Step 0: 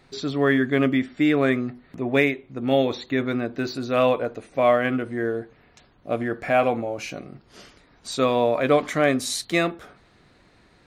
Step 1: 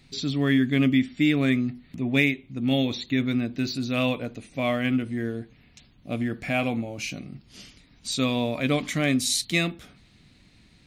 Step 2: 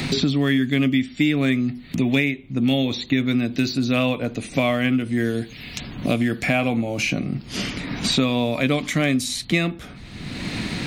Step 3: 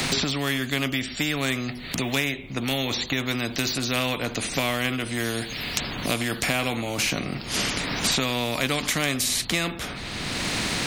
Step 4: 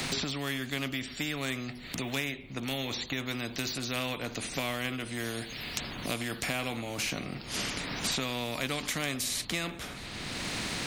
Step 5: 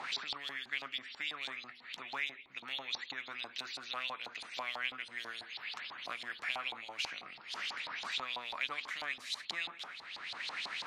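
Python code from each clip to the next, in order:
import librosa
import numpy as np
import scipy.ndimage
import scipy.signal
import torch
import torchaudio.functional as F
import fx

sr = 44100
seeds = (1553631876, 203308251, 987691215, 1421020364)

y1 = fx.band_shelf(x, sr, hz=780.0, db=-12.5, octaves=2.6)
y1 = y1 * librosa.db_to_amplitude(3.0)
y2 = fx.band_squash(y1, sr, depth_pct=100)
y2 = y2 * librosa.db_to_amplitude(3.5)
y3 = fx.spectral_comp(y2, sr, ratio=2.0)
y4 = y3 + 10.0 ** (-21.5 / 20.0) * np.pad(y3, (int(653 * sr / 1000.0), 0))[:len(y3)]
y4 = y4 * librosa.db_to_amplitude(-8.0)
y5 = fx.filter_lfo_bandpass(y4, sr, shape='saw_up', hz=6.1, low_hz=820.0, high_hz=4400.0, q=4.4)
y5 = y5 * librosa.db_to_amplitude(4.0)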